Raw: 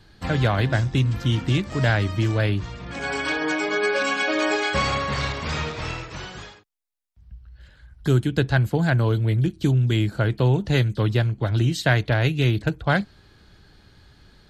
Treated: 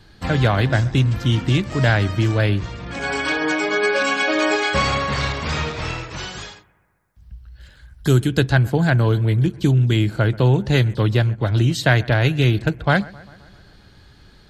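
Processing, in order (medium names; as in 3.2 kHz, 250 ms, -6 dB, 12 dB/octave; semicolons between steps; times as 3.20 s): 6.17–8.51 s: treble shelf 3.6 kHz -> 5.4 kHz +8.5 dB; bucket-brigade echo 131 ms, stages 2048, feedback 61%, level -22 dB; trim +3.5 dB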